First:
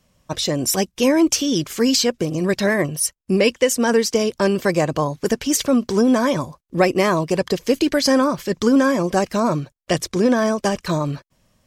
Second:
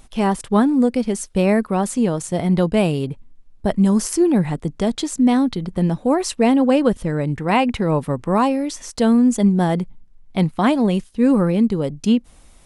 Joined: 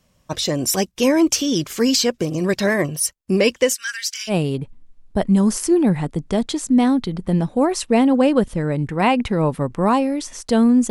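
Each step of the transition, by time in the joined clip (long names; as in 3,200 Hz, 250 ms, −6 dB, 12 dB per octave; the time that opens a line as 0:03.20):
first
0:03.74–0:04.35: elliptic high-pass filter 1,500 Hz, stop band 50 dB
0:04.31: continue with second from 0:02.80, crossfade 0.08 s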